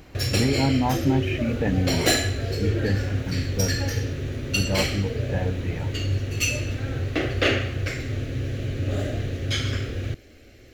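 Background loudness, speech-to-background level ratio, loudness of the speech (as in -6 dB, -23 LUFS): -26.5 LUFS, -0.5 dB, -27.0 LUFS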